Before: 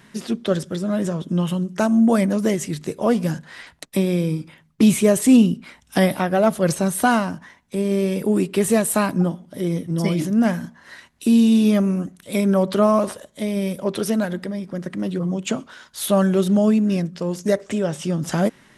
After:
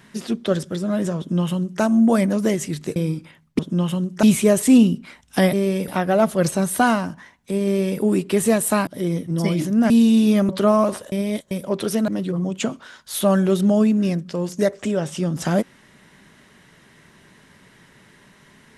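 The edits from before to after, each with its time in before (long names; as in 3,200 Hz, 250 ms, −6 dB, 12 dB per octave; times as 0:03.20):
0:01.18–0:01.82: duplicate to 0:04.82
0:02.96–0:04.19: remove
0:07.89–0:08.24: duplicate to 0:06.12
0:09.11–0:09.47: remove
0:10.50–0:11.28: remove
0:11.87–0:12.64: remove
0:13.27–0:13.66: reverse
0:14.23–0:14.95: remove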